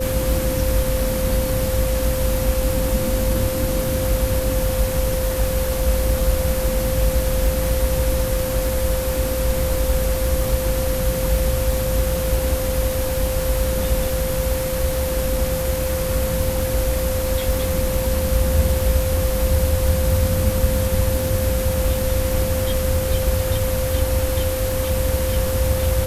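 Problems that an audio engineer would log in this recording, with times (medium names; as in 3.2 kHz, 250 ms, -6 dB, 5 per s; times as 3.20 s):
crackle 54 per s -24 dBFS
whine 520 Hz -23 dBFS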